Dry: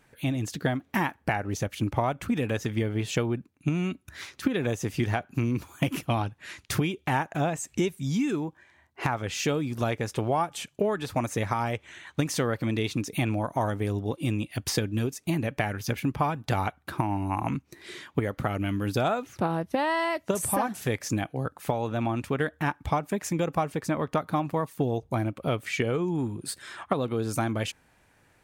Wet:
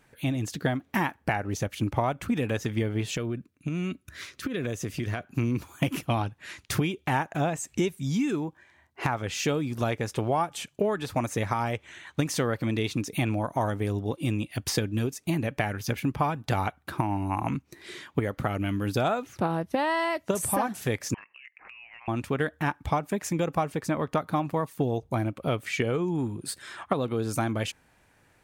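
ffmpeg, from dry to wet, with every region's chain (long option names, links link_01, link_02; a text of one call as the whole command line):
ffmpeg -i in.wav -filter_complex "[0:a]asettb=1/sr,asplit=3[link_01][link_02][link_03];[link_01]atrim=end=3.154[link_04];[link_02]atrim=start=3.15:end=5.27,asetpts=PTS-STARTPTS,afade=type=in:duration=0.004:curve=qsin,afade=type=out:start_time=2.116:duration=0.004:curve=qsin,equalizer=frequency=840:width=5.8:gain=-14,acompressor=threshold=-26dB:ratio=4:attack=3.2:release=140:knee=1:detection=peak[link_05];[link_03]atrim=start=5.266[link_06];[link_04][link_05]acrossfade=duration=0.004:curve1=hsin:curve2=qsin[link_07];[link_07][link_06]acrossfade=duration=0.004:curve1=qsin:curve2=hsin,asettb=1/sr,asplit=3[link_08][link_09][link_10];[link_08]atrim=end=21.144[link_11];[link_09]atrim=start=21.14:end=22.08,asetpts=PTS-STARTPTS,afade=type=in:duration=0.004:curve=qsin,afade=type=out:start_time=0.936:duration=0.004:curve=qsin,highpass=frequency=860:width=0.5412,highpass=frequency=860:width=1.3066,lowpass=frequency=2900:width_type=q:width=0.5098,lowpass=frequency=2900:width_type=q:width=0.6013,lowpass=frequency=2900:width_type=q:width=0.9,lowpass=frequency=2900:width_type=q:width=2.563,afreqshift=-3400,acompressor=threshold=-43dB:ratio=12:attack=3.2:release=140:knee=1:detection=peak[link_12];[link_10]atrim=start=22.076[link_13];[link_11][link_12]acrossfade=duration=0.004:curve1=hsin:curve2=qsin[link_14];[link_14][link_13]acrossfade=duration=0.004:curve1=qsin:curve2=hsin" out.wav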